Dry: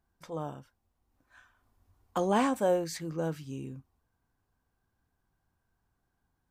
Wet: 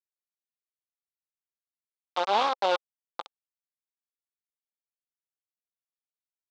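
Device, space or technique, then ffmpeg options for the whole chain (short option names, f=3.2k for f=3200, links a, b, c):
hand-held game console: -af "acrusher=bits=3:mix=0:aa=0.000001,highpass=470,equalizer=f=530:t=q:w=4:g=5,equalizer=f=830:t=q:w=4:g=9,equalizer=f=1.2k:t=q:w=4:g=9,equalizer=f=1.8k:t=q:w=4:g=-8,equalizer=f=3.6k:t=q:w=4:g=7,lowpass=f=4.9k:w=0.5412,lowpass=f=4.9k:w=1.3066,volume=-3dB"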